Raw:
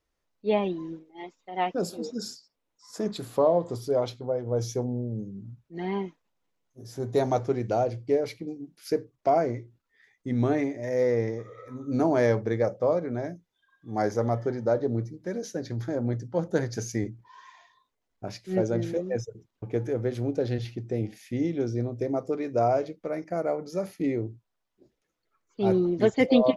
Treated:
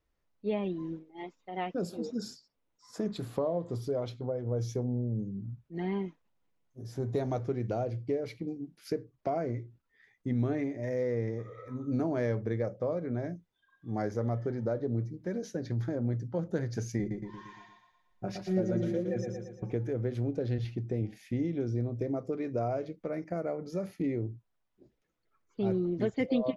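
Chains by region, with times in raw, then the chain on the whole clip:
0:16.99–0:19.73: comb filter 5.5 ms, depth 74% + repeating echo 115 ms, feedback 48%, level −7 dB
whole clip: dynamic equaliser 870 Hz, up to −5 dB, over −41 dBFS, Q 2.4; downward compressor 2 to 1, threshold −31 dBFS; bass and treble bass +5 dB, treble −6 dB; level −2 dB

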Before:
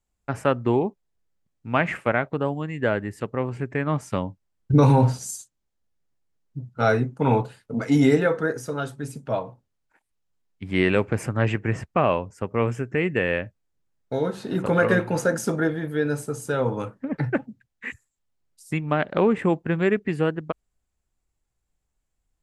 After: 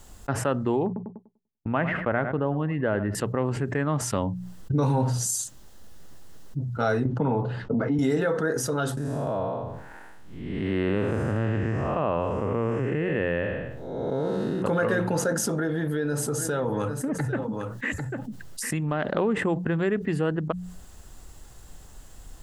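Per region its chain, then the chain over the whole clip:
0:00.86–0:03.15: noise gate −43 dBFS, range −46 dB + high-frequency loss of the air 340 metres + feedback echo with a low-pass in the loop 98 ms, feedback 22%, low-pass 3,300 Hz, level −17 dB
0:07.05–0:07.99: head-to-tape spacing loss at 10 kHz 39 dB + multiband upward and downward compressor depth 100%
0:08.97–0:14.62: spectrum smeared in time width 280 ms + high-shelf EQ 3,500 Hz −9 dB
0:15.32–0:19.05: downward compressor 2.5 to 1, threshold −28 dBFS + single-tap delay 796 ms −15.5 dB
whole clip: parametric band 2,300 Hz −9.5 dB 0.23 octaves; mains-hum notches 60/120/180 Hz; envelope flattener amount 70%; level −8 dB

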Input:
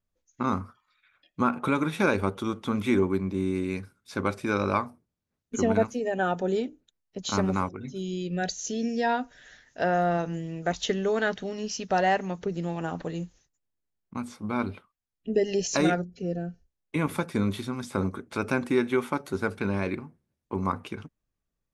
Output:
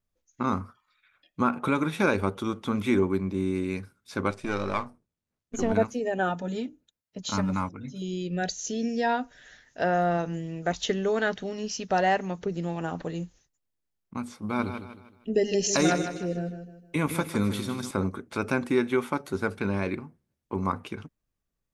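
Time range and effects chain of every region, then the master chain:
0:04.31–0:05.72: gain on one half-wave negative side −7 dB + low-pass filter 10,000 Hz 24 dB per octave
0:06.29–0:08.02: notch comb filter 380 Hz + dynamic equaliser 510 Hz, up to −7 dB, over −45 dBFS, Q 2.5
0:14.42–0:17.91: high-shelf EQ 4,500 Hz +6.5 dB + repeating echo 155 ms, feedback 37%, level −9 dB
whole clip: no processing

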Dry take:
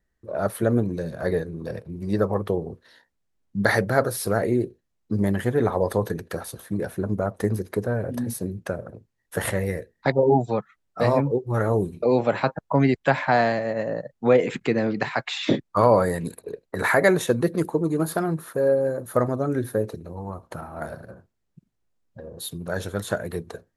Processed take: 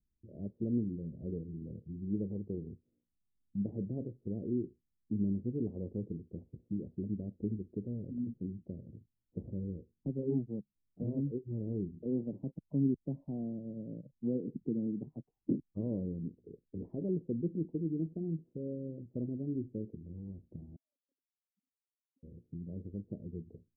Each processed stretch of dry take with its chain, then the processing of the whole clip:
0:20.76–0:22.23: three sine waves on the formant tracks + output level in coarse steps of 21 dB + formant filter i
whole clip: inverse Chebyshev low-pass filter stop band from 1,400 Hz, stop band 70 dB; dynamic equaliser 110 Hz, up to −7 dB, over −40 dBFS, Q 1.7; level −7 dB

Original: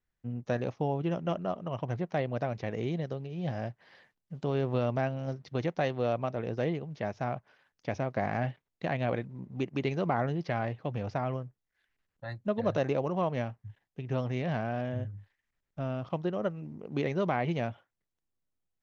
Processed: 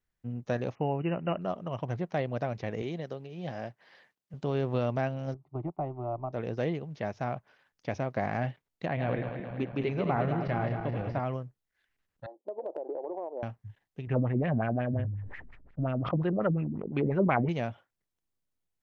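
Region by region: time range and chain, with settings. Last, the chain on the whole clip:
0:00.75–0:01.41: linear-phase brick-wall low-pass 3,000 Hz + high-shelf EQ 2,200 Hz +8.5 dB
0:02.82–0:04.34: high-pass filter 250 Hz 6 dB per octave + floating-point word with a short mantissa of 8 bits
0:05.34–0:06.33: mu-law and A-law mismatch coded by A + low-pass filter 1,500 Hz 24 dB per octave + phaser with its sweep stopped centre 330 Hz, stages 8
0:08.86–0:11.20: feedback delay that plays each chunk backwards 108 ms, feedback 77%, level −7 dB + high-frequency loss of the air 210 metres
0:12.26–0:13.43: elliptic band-pass filter 330–880 Hz, stop band 50 dB + downward compressor 16 to 1, threshold −31 dBFS + hard clipping −26.5 dBFS
0:14.07–0:17.49: low-shelf EQ 77 Hz +10 dB + auto-filter low-pass sine 5.6 Hz 220–2,600 Hz + level that may fall only so fast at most 38 dB per second
whole clip: no processing

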